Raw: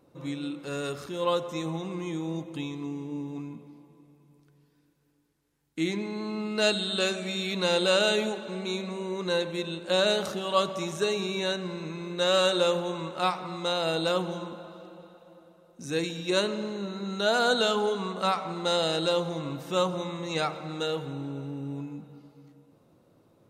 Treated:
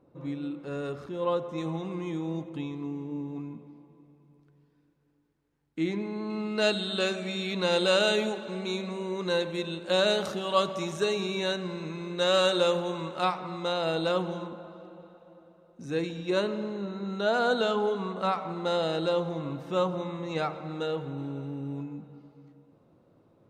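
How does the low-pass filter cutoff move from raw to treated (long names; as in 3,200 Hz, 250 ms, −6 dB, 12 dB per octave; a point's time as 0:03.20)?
low-pass filter 6 dB per octave
1,100 Hz
from 0:01.58 2,700 Hz
from 0:02.49 1,700 Hz
from 0:06.30 3,700 Hz
from 0:07.72 6,600 Hz
from 0:13.25 2,900 Hz
from 0:14.47 1,700 Hz
from 0:21.18 3,200 Hz
from 0:21.83 2,000 Hz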